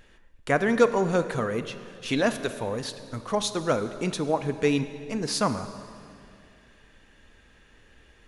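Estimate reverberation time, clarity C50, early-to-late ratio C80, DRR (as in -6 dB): 2.5 s, 11.5 dB, 12.5 dB, 11.0 dB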